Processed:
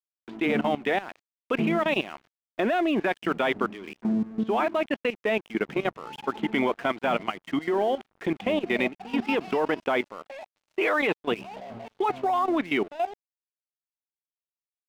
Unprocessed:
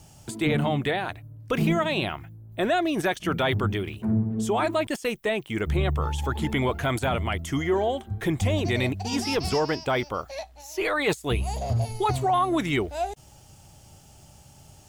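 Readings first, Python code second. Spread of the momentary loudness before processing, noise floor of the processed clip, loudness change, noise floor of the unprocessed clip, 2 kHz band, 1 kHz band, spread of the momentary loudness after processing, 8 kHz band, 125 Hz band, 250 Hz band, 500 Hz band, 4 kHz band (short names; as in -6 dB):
8 LU, under -85 dBFS, -1.0 dB, -52 dBFS, +0.5 dB, -0.5 dB, 10 LU, under -15 dB, -14.0 dB, -0.5 dB, 0.0 dB, -4.0 dB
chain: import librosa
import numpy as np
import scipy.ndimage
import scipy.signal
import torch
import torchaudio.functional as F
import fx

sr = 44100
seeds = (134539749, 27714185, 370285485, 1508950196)

y = scipy.signal.sosfilt(scipy.signal.ellip(3, 1.0, 50, [210.0, 2900.0], 'bandpass', fs=sr, output='sos'), x)
y = fx.level_steps(y, sr, step_db=14)
y = np.sign(y) * np.maximum(np.abs(y) - 10.0 ** (-51.0 / 20.0), 0.0)
y = y * librosa.db_to_amplitude(5.0)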